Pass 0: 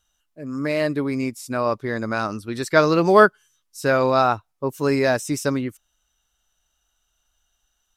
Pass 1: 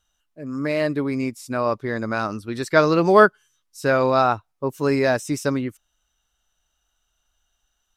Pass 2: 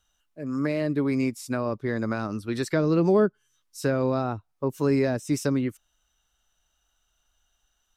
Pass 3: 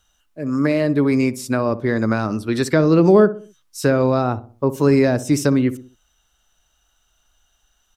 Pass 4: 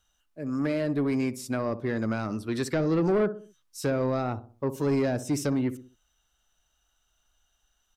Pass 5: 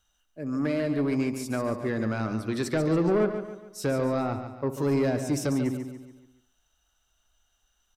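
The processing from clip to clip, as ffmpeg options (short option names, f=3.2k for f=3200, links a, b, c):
-af "highshelf=f=5.6k:g=-4.5"
-filter_complex "[0:a]acrossover=split=410[a][b];[b]acompressor=threshold=-30dB:ratio=8[c];[a][c]amix=inputs=2:normalize=0"
-filter_complex "[0:a]asplit=2[a][b];[b]adelay=63,lowpass=f=1k:p=1,volume=-13.5dB,asplit=2[c][d];[d]adelay=63,lowpass=f=1k:p=1,volume=0.45,asplit=2[e][f];[f]adelay=63,lowpass=f=1k:p=1,volume=0.45,asplit=2[g][h];[h]adelay=63,lowpass=f=1k:p=1,volume=0.45[i];[a][c][e][g][i]amix=inputs=5:normalize=0,volume=8dB"
-af "asoftclip=type=tanh:threshold=-11dB,volume=-8dB"
-af "aecho=1:1:142|284|426|568|710:0.355|0.153|0.0656|0.0282|0.0121"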